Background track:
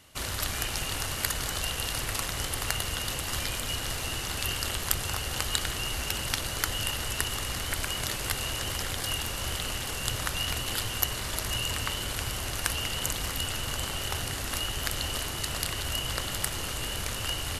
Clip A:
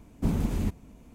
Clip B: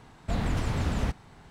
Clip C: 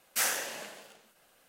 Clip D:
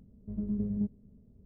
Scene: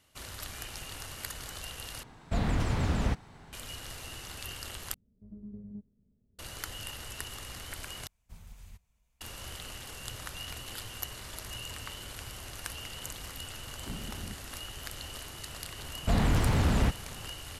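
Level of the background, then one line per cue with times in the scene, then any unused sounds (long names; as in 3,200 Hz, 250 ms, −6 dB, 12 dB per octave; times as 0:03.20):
background track −10.5 dB
0:02.03: overwrite with B −0.5 dB
0:04.94: overwrite with D −13 dB
0:08.07: overwrite with A −13 dB + guitar amp tone stack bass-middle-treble 10-0-10
0:13.55: mix in A −14.5 dB + all-pass dispersion lows, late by 97 ms, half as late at 930 Hz
0:15.79: mix in B + leveller curve on the samples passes 1
not used: C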